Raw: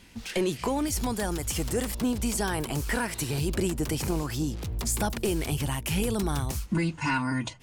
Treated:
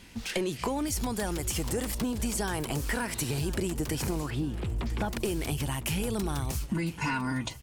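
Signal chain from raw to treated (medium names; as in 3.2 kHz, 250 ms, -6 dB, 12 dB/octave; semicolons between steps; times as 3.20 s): 4.30–5.13 s: low-pass 3.3 kHz 24 dB/octave; compression, threshold -29 dBFS, peak gain reduction 6.5 dB; on a send: feedback delay 1005 ms, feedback 40%, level -17 dB; on the sum: trim +2 dB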